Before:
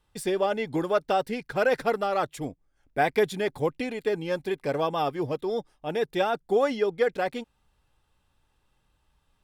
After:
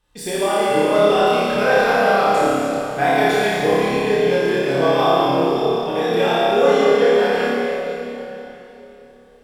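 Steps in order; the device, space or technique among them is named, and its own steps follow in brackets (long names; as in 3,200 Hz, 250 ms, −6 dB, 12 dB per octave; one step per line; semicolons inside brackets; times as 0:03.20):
parametric band 4,900 Hz +3 dB 2.9 octaves
tunnel (flutter between parallel walls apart 5 metres, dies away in 0.77 s; convolution reverb RT60 3.5 s, pre-delay 11 ms, DRR −6 dB)
level −1 dB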